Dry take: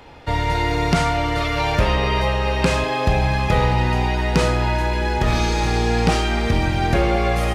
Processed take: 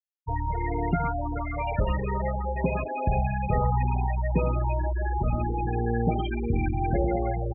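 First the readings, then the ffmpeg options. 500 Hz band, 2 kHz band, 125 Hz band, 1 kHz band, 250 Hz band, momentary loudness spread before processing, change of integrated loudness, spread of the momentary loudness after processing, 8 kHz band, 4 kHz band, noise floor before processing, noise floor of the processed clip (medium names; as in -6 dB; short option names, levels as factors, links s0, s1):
-8.5 dB, -14.5 dB, -6.5 dB, -7.5 dB, -7.0 dB, 2 LU, -8.0 dB, 4 LU, under -40 dB, under -20 dB, -23 dBFS, -32 dBFS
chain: -af "aecho=1:1:112|224|336:0.266|0.0851|0.0272,afftfilt=real='re*gte(hypot(re,im),0.282)':imag='im*gte(hypot(re,im),0.282)':win_size=1024:overlap=0.75,volume=0.473"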